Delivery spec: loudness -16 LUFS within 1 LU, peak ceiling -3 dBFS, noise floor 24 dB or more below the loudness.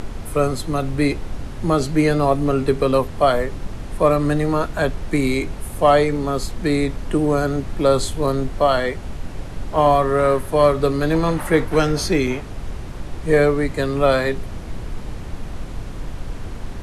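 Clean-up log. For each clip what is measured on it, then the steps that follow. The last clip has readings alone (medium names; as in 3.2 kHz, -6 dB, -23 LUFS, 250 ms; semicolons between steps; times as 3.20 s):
dropouts 2; longest dropout 3.5 ms; noise floor -32 dBFS; noise floor target -44 dBFS; loudness -19.5 LUFS; peak level -3.5 dBFS; loudness target -16.0 LUFS
-> interpolate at 8.27/12.27 s, 3.5 ms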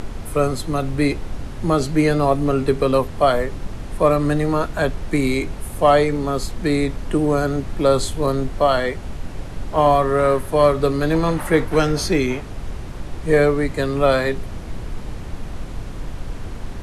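dropouts 0; noise floor -32 dBFS; noise floor target -44 dBFS
-> noise print and reduce 12 dB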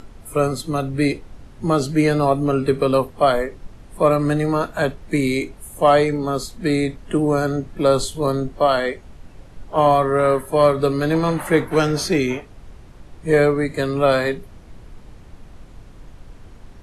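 noise floor -43 dBFS; noise floor target -44 dBFS
-> noise print and reduce 6 dB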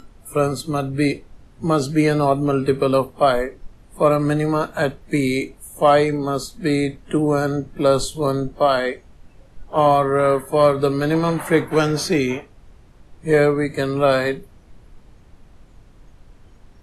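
noise floor -49 dBFS; loudness -19.5 LUFS; peak level -4.0 dBFS; loudness target -16.0 LUFS
-> trim +3.5 dB; peak limiter -3 dBFS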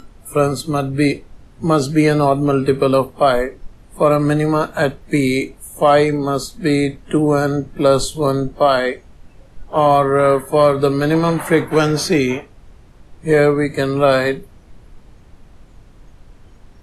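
loudness -16.5 LUFS; peak level -3.0 dBFS; noise floor -45 dBFS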